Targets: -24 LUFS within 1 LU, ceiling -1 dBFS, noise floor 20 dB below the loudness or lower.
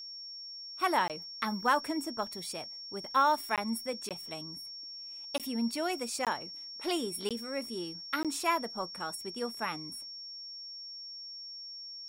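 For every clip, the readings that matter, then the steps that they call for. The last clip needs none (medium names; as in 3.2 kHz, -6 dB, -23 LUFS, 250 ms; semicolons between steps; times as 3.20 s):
dropouts 7; longest dropout 17 ms; steady tone 5.5 kHz; tone level -42 dBFS; loudness -34.5 LUFS; peak level -15.5 dBFS; loudness target -24.0 LUFS
-> interpolate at 1.08/3.56/4.09/5.38/6.25/7.29/8.23 s, 17 ms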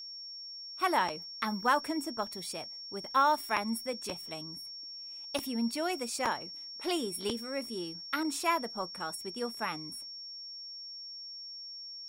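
dropouts 0; steady tone 5.5 kHz; tone level -42 dBFS
-> band-stop 5.5 kHz, Q 30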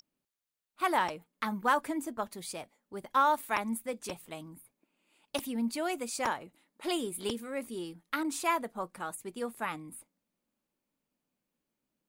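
steady tone not found; loudness -33.5 LUFS; peak level -15.5 dBFS; loudness target -24.0 LUFS
-> trim +9.5 dB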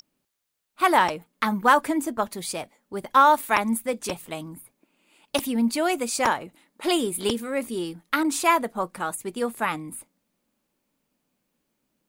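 loudness -24.0 LUFS; peak level -6.0 dBFS; noise floor -77 dBFS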